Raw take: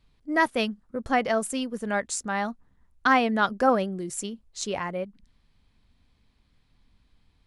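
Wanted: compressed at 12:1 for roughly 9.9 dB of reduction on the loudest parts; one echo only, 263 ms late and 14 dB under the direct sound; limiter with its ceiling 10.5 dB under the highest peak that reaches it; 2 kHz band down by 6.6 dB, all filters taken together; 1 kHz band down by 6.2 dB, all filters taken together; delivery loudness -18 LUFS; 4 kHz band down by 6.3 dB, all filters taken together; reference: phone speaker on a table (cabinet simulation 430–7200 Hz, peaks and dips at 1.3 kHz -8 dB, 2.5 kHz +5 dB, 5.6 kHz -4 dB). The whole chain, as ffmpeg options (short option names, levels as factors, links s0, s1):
-af "equalizer=f=1000:t=o:g=-5.5,equalizer=f=2000:t=o:g=-4,equalizer=f=4000:t=o:g=-7.5,acompressor=threshold=0.0398:ratio=12,alimiter=level_in=1.5:limit=0.0631:level=0:latency=1,volume=0.668,highpass=f=430:w=0.5412,highpass=f=430:w=1.3066,equalizer=f=1300:t=q:w=4:g=-8,equalizer=f=2500:t=q:w=4:g=5,equalizer=f=5600:t=q:w=4:g=-4,lowpass=f=7200:w=0.5412,lowpass=f=7200:w=1.3066,aecho=1:1:263:0.2,volume=15.8"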